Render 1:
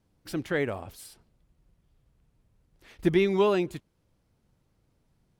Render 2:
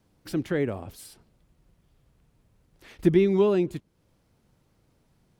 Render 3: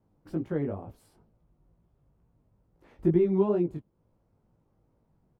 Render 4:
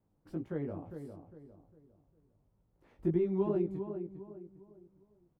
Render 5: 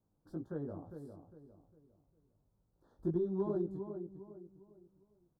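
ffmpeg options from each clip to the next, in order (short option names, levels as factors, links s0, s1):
-filter_complex "[0:a]lowshelf=f=100:g=-5.5,acrossover=split=420[s0][s1];[s1]acompressor=threshold=0.00126:ratio=1.5[s2];[s0][s2]amix=inputs=2:normalize=0,volume=2"
-af "flanger=delay=17.5:depth=3.3:speed=2.2,firequalizer=gain_entry='entry(940,0);entry(1700,-10);entry(3600,-17)':delay=0.05:min_phase=1"
-filter_complex "[0:a]asplit=2[s0][s1];[s1]adelay=404,lowpass=f=1600:p=1,volume=0.398,asplit=2[s2][s3];[s3]adelay=404,lowpass=f=1600:p=1,volume=0.36,asplit=2[s4][s5];[s5]adelay=404,lowpass=f=1600:p=1,volume=0.36,asplit=2[s6][s7];[s7]adelay=404,lowpass=f=1600:p=1,volume=0.36[s8];[s0][s2][s4][s6][s8]amix=inputs=5:normalize=0,volume=0.447"
-filter_complex "[0:a]asplit=2[s0][s1];[s1]volume=15.8,asoftclip=hard,volume=0.0631,volume=0.299[s2];[s0][s2]amix=inputs=2:normalize=0,asuperstop=centerf=2400:order=8:qfactor=1.3,volume=0.501"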